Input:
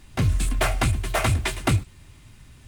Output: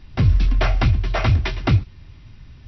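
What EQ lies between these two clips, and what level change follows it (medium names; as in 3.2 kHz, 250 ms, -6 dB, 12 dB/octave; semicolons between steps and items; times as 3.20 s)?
brick-wall FIR low-pass 5.9 kHz; bass shelf 180 Hz +7.5 dB; 0.0 dB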